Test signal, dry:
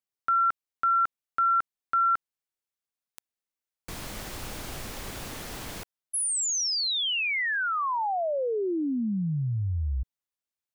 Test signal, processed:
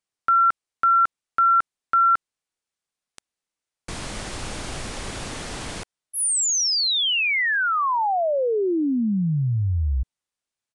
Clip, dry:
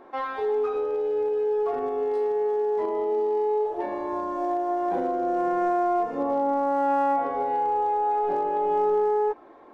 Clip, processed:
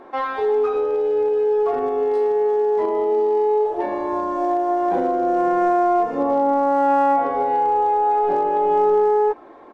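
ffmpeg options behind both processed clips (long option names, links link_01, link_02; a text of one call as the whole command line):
ffmpeg -i in.wav -af "aresample=22050,aresample=44100,volume=6dB" out.wav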